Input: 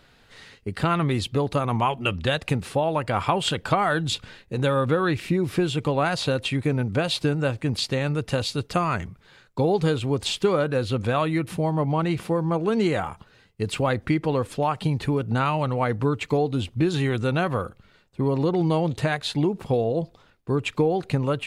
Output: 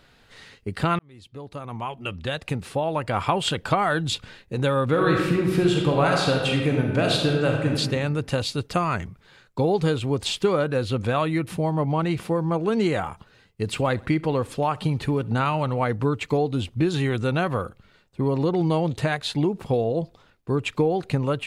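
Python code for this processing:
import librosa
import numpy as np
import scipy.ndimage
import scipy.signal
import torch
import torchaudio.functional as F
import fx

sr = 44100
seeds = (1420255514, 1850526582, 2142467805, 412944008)

y = fx.reverb_throw(x, sr, start_s=4.89, length_s=2.88, rt60_s=1.3, drr_db=0.0)
y = fx.echo_feedback(y, sr, ms=64, feedback_pct=57, wet_db=-24, at=(13.62, 15.81))
y = fx.edit(y, sr, fx.fade_in_span(start_s=0.99, length_s=2.28), tone=tone)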